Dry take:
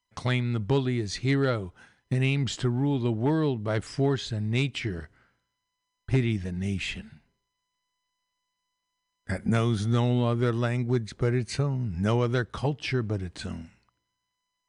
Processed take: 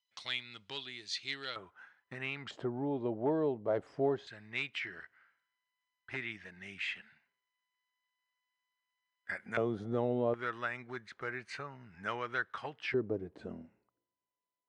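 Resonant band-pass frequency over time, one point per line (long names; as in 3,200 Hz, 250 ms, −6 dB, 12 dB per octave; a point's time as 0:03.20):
resonant band-pass, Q 1.7
3,500 Hz
from 0:01.56 1,400 Hz
from 0:02.51 580 Hz
from 0:04.27 1,800 Hz
from 0:09.57 520 Hz
from 0:10.34 1,600 Hz
from 0:12.94 440 Hz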